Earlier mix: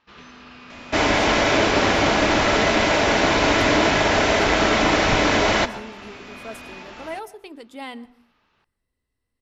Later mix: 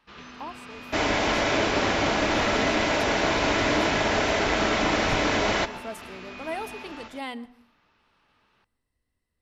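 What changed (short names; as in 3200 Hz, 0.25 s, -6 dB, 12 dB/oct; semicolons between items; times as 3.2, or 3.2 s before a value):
speech: entry -0.60 s; second sound -5.5 dB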